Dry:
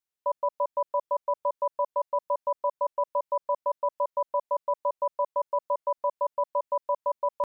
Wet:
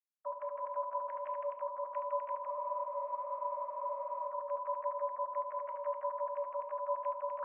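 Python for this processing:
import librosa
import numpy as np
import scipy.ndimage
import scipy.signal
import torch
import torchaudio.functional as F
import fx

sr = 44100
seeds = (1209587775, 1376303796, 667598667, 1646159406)

y = fx.sine_speech(x, sr)
y = fx.level_steps(y, sr, step_db=21)
y = fx.peak_eq(y, sr, hz=490.0, db=-7.5, octaves=0.53)
y = fx.echo_multitap(y, sr, ms=(71, 158, 251, 324), db=(-8.5, -5.5, -5.0, -8.5))
y = fx.room_shoebox(y, sr, seeds[0], volume_m3=190.0, walls='furnished', distance_m=0.61)
y = fx.spec_freeze(y, sr, seeds[1], at_s=2.49, hold_s=1.8)
y = F.gain(torch.from_numpy(y), 9.0).numpy()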